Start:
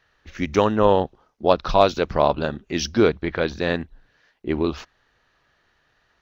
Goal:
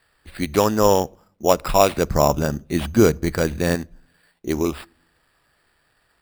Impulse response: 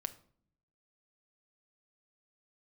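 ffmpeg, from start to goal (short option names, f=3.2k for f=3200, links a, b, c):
-filter_complex "[0:a]asettb=1/sr,asplit=3[a][b][c];[a]atrim=end=1.974[d];[b]atrim=start=1.97:end=3.75,asetpts=PTS-STARTPTS,afade=t=in:d=0.004:c=qsin,afade=t=out:st=1.776:d=0.004:c=qsin,bass=f=250:g=7,treble=f=4k:g=-10[e];[c]atrim=start=3.746[f];[d][e]acrossfade=d=0.004:c1=hsin:c2=qsin[g];[g][f]acrossfade=d=0.004:c1=qsin:c2=hsin,acrusher=samples=7:mix=1:aa=0.000001,asplit=2[h][i];[1:a]atrim=start_sample=2205[j];[i][j]afir=irnorm=-1:irlink=0,volume=-12.5dB[k];[h][k]amix=inputs=2:normalize=0,volume=-1dB"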